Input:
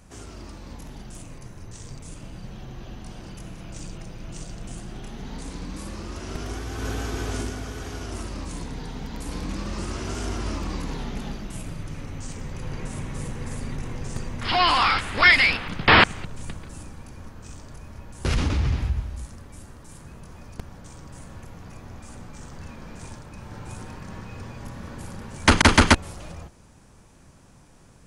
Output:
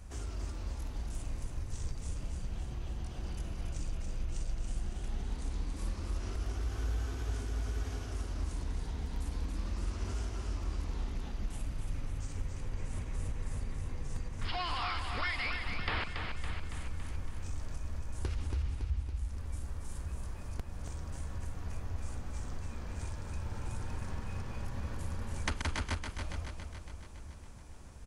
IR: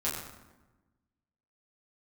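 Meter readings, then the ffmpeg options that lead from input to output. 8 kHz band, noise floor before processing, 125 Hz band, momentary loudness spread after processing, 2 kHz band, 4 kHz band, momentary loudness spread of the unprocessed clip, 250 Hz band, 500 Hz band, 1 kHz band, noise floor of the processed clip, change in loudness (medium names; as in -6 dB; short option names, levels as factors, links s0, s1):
-13.0 dB, -51 dBFS, -7.0 dB, 7 LU, -18.5 dB, -17.0 dB, 25 LU, -15.5 dB, -15.0 dB, -17.0 dB, -45 dBFS, -16.0 dB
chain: -af "lowshelf=f=100:t=q:w=1.5:g=9,acompressor=threshold=0.0316:ratio=6,aecho=1:1:280|560|840|1120|1400|1680|1960|2240:0.501|0.296|0.174|0.103|0.0607|0.0358|0.0211|0.0125,volume=0.631"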